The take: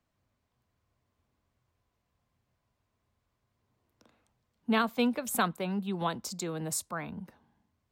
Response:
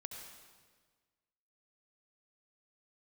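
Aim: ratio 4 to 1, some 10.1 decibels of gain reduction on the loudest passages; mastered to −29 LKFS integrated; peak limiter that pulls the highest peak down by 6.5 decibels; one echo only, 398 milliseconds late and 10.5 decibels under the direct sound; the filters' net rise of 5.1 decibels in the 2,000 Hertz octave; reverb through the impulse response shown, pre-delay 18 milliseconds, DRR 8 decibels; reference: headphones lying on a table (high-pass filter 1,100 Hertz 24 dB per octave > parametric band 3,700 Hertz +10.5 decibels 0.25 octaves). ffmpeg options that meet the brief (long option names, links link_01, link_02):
-filter_complex "[0:a]equalizer=frequency=2000:width_type=o:gain=7,acompressor=threshold=-33dB:ratio=4,alimiter=level_in=5dB:limit=-24dB:level=0:latency=1,volume=-5dB,aecho=1:1:398:0.299,asplit=2[link_01][link_02];[1:a]atrim=start_sample=2205,adelay=18[link_03];[link_02][link_03]afir=irnorm=-1:irlink=0,volume=-5dB[link_04];[link_01][link_04]amix=inputs=2:normalize=0,highpass=frequency=1100:width=0.5412,highpass=frequency=1100:width=1.3066,equalizer=frequency=3700:width_type=o:width=0.25:gain=10.5,volume=12.5dB"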